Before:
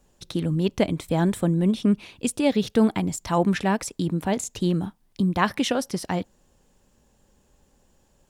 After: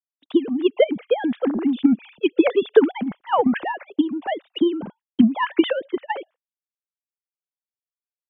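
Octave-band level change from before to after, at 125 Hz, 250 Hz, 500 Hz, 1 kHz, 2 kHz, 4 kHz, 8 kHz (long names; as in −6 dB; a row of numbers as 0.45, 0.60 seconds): −15.0 dB, +3.0 dB, +6.0 dB, +2.5 dB, +2.0 dB, +0.5 dB, below −40 dB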